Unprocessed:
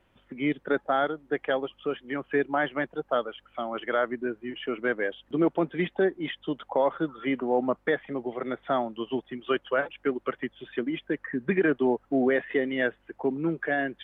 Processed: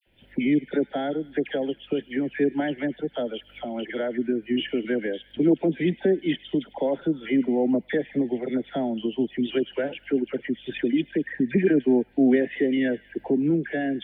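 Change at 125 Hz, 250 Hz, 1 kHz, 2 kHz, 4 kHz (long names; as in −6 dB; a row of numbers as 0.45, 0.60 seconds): +5.5 dB, +7.0 dB, −6.5 dB, −3.5 dB, can't be measured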